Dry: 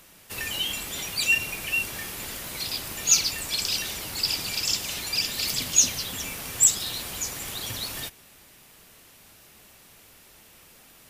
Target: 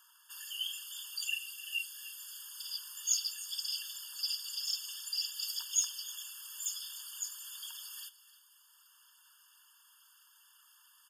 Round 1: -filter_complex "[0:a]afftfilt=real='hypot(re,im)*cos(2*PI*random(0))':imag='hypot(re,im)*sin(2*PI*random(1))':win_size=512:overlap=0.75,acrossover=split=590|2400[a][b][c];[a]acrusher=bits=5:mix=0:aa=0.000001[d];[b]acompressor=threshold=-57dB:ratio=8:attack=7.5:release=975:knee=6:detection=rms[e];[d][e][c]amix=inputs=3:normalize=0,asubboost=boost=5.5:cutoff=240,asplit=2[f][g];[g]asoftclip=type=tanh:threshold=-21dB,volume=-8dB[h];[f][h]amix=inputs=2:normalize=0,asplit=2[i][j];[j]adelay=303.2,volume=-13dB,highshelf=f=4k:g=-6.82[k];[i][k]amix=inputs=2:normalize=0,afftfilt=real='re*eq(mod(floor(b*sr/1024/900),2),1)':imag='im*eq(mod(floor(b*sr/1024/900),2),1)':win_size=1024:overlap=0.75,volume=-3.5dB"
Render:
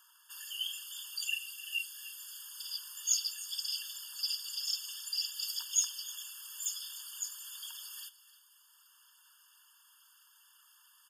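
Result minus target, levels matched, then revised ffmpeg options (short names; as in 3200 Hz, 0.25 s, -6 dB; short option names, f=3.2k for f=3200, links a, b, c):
soft clip: distortion -6 dB
-filter_complex "[0:a]afftfilt=real='hypot(re,im)*cos(2*PI*random(0))':imag='hypot(re,im)*sin(2*PI*random(1))':win_size=512:overlap=0.75,acrossover=split=590|2400[a][b][c];[a]acrusher=bits=5:mix=0:aa=0.000001[d];[b]acompressor=threshold=-57dB:ratio=8:attack=7.5:release=975:knee=6:detection=rms[e];[d][e][c]amix=inputs=3:normalize=0,asubboost=boost=5.5:cutoff=240,asplit=2[f][g];[g]asoftclip=type=tanh:threshold=-29.5dB,volume=-8dB[h];[f][h]amix=inputs=2:normalize=0,asplit=2[i][j];[j]adelay=303.2,volume=-13dB,highshelf=f=4k:g=-6.82[k];[i][k]amix=inputs=2:normalize=0,afftfilt=real='re*eq(mod(floor(b*sr/1024/900),2),1)':imag='im*eq(mod(floor(b*sr/1024/900),2),1)':win_size=1024:overlap=0.75,volume=-3.5dB"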